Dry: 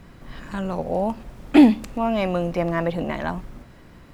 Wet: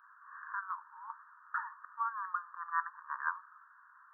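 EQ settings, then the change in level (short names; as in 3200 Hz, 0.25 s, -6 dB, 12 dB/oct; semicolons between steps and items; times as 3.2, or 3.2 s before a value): brick-wall FIR band-pass 850–1900 Hz; fixed phaser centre 1300 Hz, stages 8; +1.5 dB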